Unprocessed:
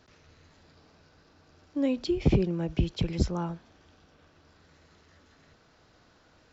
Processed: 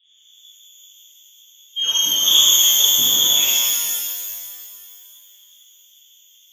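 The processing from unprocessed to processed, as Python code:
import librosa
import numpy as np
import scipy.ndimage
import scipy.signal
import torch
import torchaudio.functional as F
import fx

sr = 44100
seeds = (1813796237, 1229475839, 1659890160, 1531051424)

y = fx.env_lowpass(x, sr, base_hz=370.0, full_db=-26.0)
y = fx.freq_invert(y, sr, carrier_hz=3500)
y = fx.rev_shimmer(y, sr, seeds[0], rt60_s=2.1, semitones=12, shimmer_db=-2, drr_db=-11.0)
y = F.gain(torch.from_numpy(y), -2.5).numpy()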